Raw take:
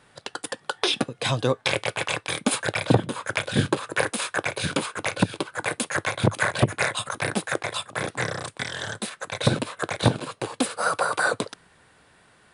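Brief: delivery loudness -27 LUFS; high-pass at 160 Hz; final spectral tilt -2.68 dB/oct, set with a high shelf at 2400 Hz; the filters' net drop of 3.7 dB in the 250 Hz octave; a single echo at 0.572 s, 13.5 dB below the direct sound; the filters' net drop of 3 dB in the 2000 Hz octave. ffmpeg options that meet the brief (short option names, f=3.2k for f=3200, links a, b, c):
-af "highpass=160,equalizer=f=250:t=o:g=-3.5,equalizer=f=2k:t=o:g=-6,highshelf=f=2.4k:g=4,aecho=1:1:572:0.211"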